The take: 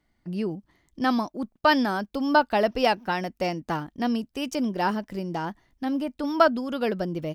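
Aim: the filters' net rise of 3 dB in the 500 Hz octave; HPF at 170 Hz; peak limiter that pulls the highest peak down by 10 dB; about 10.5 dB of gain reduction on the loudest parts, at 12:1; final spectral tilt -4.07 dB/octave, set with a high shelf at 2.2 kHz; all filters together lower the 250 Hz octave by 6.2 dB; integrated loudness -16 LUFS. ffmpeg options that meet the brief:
-af "highpass=170,equalizer=f=250:t=o:g=-8,equalizer=f=500:t=o:g=6,highshelf=f=2200:g=-4,acompressor=threshold=0.0708:ratio=12,volume=7.5,alimiter=limit=0.562:level=0:latency=1"

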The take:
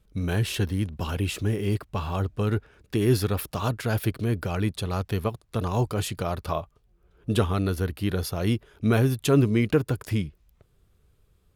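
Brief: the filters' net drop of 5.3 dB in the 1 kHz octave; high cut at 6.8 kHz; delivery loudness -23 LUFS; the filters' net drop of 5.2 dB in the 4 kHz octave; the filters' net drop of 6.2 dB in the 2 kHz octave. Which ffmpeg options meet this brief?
-af "lowpass=6800,equalizer=f=1000:t=o:g=-5.5,equalizer=f=2000:t=o:g=-5.5,equalizer=f=4000:t=o:g=-4,volume=1.68"

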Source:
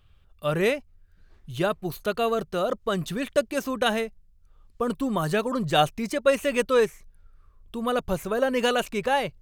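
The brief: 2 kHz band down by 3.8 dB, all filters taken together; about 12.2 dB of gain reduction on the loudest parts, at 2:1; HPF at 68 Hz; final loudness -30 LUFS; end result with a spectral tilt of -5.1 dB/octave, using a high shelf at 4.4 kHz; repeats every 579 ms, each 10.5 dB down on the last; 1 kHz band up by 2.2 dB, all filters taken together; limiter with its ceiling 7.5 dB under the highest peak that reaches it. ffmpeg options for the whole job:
-af "highpass=68,equalizer=f=1000:t=o:g=5,equalizer=f=2000:t=o:g=-8.5,highshelf=f=4400:g=4.5,acompressor=threshold=0.0126:ratio=2,alimiter=level_in=1.26:limit=0.0631:level=0:latency=1,volume=0.794,aecho=1:1:579|1158|1737:0.299|0.0896|0.0269,volume=2.24"

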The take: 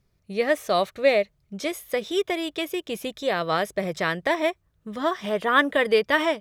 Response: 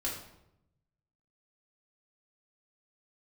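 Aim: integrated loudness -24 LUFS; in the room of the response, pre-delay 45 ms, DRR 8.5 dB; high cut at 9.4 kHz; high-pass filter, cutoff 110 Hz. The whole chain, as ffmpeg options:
-filter_complex "[0:a]highpass=110,lowpass=9400,asplit=2[s0][s1];[1:a]atrim=start_sample=2205,adelay=45[s2];[s1][s2]afir=irnorm=-1:irlink=0,volume=0.251[s3];[s0][s3]amix=inputs=2:normalize=0"

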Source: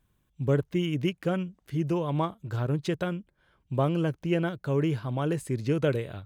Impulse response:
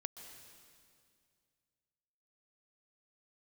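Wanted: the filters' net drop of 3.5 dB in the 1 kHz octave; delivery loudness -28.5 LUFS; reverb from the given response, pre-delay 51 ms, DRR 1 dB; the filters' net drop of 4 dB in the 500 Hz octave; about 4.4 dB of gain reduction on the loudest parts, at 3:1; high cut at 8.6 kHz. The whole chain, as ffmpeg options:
-filter_complex "[0:a]lowpass=8600,equalizer=f=500:t=o:g=-4.5,equalizer=f=1000:t=o:g=-3,acompressor=threshold=0.0398:ratio=3,asplit=2[s0][s1];[1:a]atrim=start_sample=2205,adelay=51[s2];[s1][s2]afir=irnorm=-1:irlink=0,volume=1.26[s3];[s0][s3]amix=inputs=2:normalize=0,volume=1.33"

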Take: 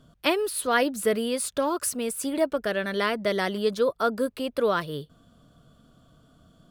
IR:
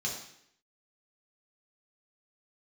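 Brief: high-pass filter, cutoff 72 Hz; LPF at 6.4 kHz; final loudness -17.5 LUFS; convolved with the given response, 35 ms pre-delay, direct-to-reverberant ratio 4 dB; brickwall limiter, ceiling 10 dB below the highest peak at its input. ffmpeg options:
-filter_complex "[0:a]highpass=72,lowpass=6400,alimiter=limit=0.1:level=0:latency=1,asplit=2[s0][s1];[1:a]atrim=start_sample=2205,adelay=35[s2];[s1][s2]afir=irnorm=-1:irlink=0,volume=0.398[s3];[s0][s3]amix=inputs=2:normalize=0,volume=3.35"

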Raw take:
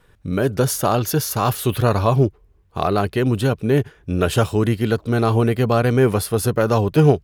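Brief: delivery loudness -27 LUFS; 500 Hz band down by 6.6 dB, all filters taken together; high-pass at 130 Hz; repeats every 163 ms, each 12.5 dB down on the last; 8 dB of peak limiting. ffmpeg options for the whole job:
-af "highpass=130,equalizer=f=500:t=o:g=-8.5,alimiter=limit=0.224:level=0:latency=1,aecho=1:1:163|326|489:0.237|0.0569|0.0137,volume=0.794"

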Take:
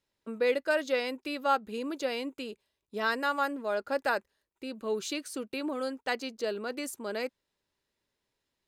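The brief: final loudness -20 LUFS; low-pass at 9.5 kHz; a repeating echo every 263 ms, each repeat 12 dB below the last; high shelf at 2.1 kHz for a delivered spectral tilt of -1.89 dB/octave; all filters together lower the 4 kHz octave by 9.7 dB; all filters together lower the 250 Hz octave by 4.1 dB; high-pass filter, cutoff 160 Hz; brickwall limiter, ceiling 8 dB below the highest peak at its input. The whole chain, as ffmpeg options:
-af "highpass=160,lowpass=9500,equalizer=f=250:t=o:g=-4,highshelf=f=2100:g=-5,equalizer=f=4000:t=o:g=-8,alimiter=limit=0.0631:level=0:latency=1,aecho=1:1:263|526|789:0.251|0.0628|0.0157,volume=6.68"

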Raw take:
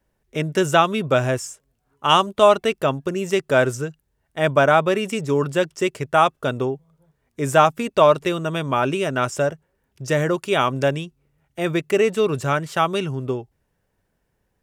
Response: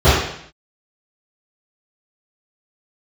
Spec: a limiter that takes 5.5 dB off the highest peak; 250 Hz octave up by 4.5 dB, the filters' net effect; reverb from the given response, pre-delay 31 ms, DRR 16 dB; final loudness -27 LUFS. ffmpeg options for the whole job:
-filter_complex "[0:a]equalizer=f=250:t=o:g=6.5,alimiter=limit=0.501:level=0:latency=1,asplit=2[s0][s1];[1:a]atrim=start_sample=2205,adelay=31[s2];[s1][s2]afir=irnorm=-1:irlink=0,volume=0.00631[s3];[s0][s3]amix=inputs=2:normalize=0,volume=0.422"

